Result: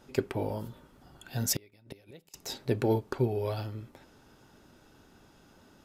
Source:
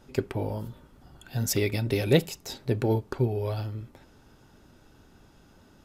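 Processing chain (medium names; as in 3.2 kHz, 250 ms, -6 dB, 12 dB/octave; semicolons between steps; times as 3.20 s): bass shelf 120 Hz -8.5 dB; 1.53–2.34 s: inverted gate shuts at -22 dBFS, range -30 dB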